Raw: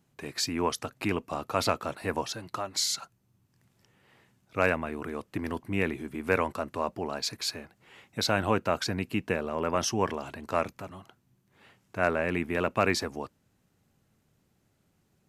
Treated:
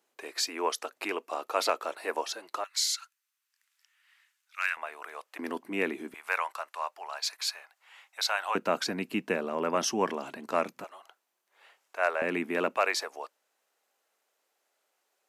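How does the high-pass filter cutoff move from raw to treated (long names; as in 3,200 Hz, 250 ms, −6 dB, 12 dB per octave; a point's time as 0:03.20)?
high-pass filter 24 dB per octave
380 Hz
from 0:02.64 1,400 Hz
from 0:04.77 630 Hz
from 0:05.39 250 Hz
from 0:06.14 770 Hz
from 0:08.55 190 Hz
from 0:10.84 530 Hz
from 0:12.22 220 Hz
from 0:12.77 510 Hz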